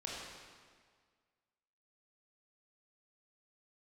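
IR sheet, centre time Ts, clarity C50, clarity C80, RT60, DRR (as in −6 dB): 110 ms, −2.0 dB, 0.5 dB, 1.8 s, −5.0 dB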